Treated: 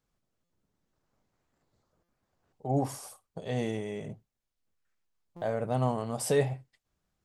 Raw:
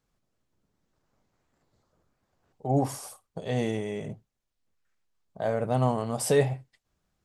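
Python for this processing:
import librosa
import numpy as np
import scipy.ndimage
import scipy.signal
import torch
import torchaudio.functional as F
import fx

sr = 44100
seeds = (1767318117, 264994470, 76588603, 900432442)

y = fx.buffer_glitch(x, sr, at_s=(0.44, 2.03, 5.36), block=256, repeats=9)
y = y * 10.0 ** (-3.5 / 20.0)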